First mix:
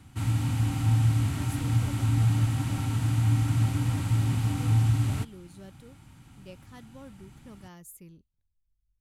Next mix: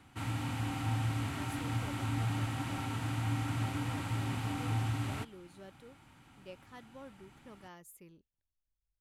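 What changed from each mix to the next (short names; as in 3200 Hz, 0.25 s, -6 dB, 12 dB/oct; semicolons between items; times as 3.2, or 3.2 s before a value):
master: add tone controls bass -12 dB, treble -8 dB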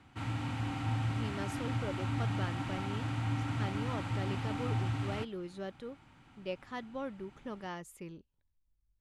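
speech +11.0 dB; master: add air absorption 69 m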